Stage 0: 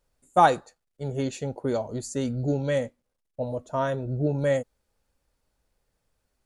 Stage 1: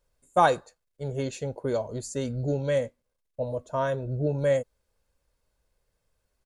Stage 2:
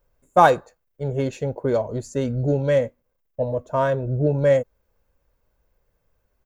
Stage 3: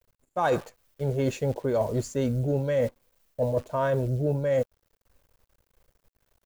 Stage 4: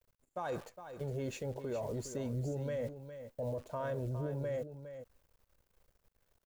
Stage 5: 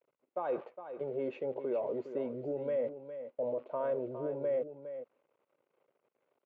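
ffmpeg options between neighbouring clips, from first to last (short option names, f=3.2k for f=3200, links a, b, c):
-af "aecho=1:1:1.9:0.31,volume=-1.5dB"
-filter_complex "[0:a]equalizer=f=9.1k:w=1:g=-15,asplit=2[a][b];[b]adynamicsmooth=sensitivity=6.5:basefreq=3.4k,volume=1dB[c];[a][c]amix=inputs=2:normalize=0,aexciter=amount=3.7:drive=1.5:freq=5.8k"
-af "acrusher=bits=9:dc=4:mix=0:aa=0.000001,areverse,acompressor=threshold=-26dB:ratio=10,areverse,volume=4dB"
-af "alimiter=level_in=0.5dB:limit=-24dB:level=0:latency=1:release=80,volume=-0.5dB,aecho=1:1:410:0.299,volume=-6dB"
-af "highpass=f=200:w=0.5412,highpass=f=200:w=1.3066,equalizer=f=200:t=q:w=4:g=-9,equalizer=f=380:t=q:w=4:g=4,equalizer=f=550:t=q:w=4:g=4,equalizer=f=1.7k:t=q:w=4:g=-9,lowpass=f=2.5k:w=0.5412,lowpass=f=2.5k:w=1.3066,volume=2dB"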